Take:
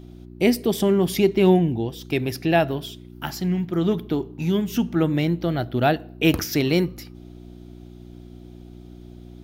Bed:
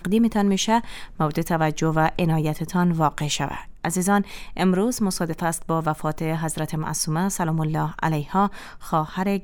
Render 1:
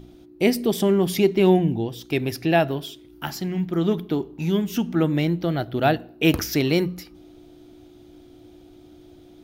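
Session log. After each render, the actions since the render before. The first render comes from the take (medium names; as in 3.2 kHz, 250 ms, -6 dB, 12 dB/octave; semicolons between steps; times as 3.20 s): de-hum 60 Hz, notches 4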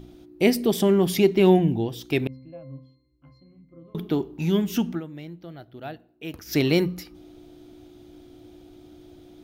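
2.27–3.95 s: pitch-class resonator C, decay 0.61 s; 4.89–6.57 s: dip -17 dB, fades 0.12 s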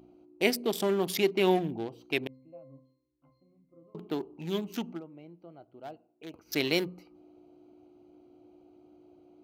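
local Wiener filter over 25 samples; high-pass 810 Hz 6 dB/octave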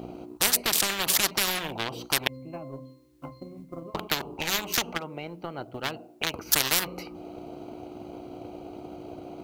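transient shaper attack +8 dB, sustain -2 dB; spectrum-flattening compressor 10:1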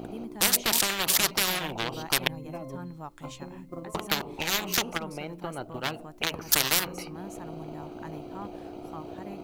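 add bed -21 dB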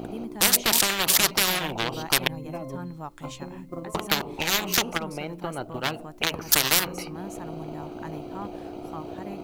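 trim +3.5 dB; peak limiter -2 dBFS, peak gain reduction 3 dB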